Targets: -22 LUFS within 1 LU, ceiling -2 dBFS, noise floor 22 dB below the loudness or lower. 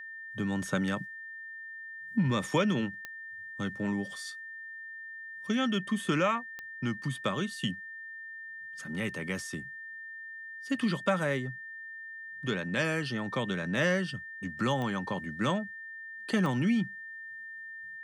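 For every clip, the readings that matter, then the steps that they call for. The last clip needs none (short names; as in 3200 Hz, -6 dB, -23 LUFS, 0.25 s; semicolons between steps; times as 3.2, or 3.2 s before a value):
clicks 4; steady tone 1800 Hz; tone level -41 dBFS; loudness -33.0 LUFS; peak -15.5 dBFS; loudness target -22.0 LUFS
-> de-click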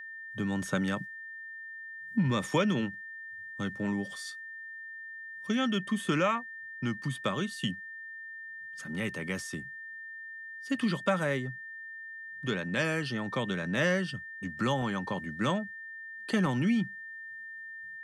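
clicks 0; steady tone 1800 Hz; tone level -41 dBFS
-> notch 1800 Hz, Q 30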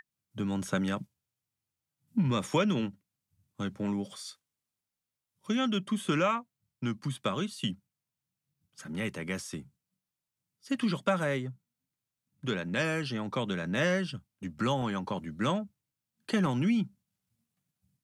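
steady tone none; loudness -32.0 LUFS; peak -15.5 dBFS; loudness target -22.0 LUFS
-> gain +10 dB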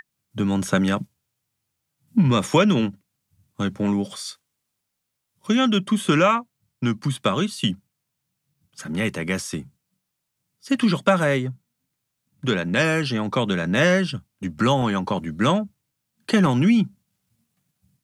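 loudness -22.0 LUFS; peak -5.5 dBFS; noise floor -79 dBFS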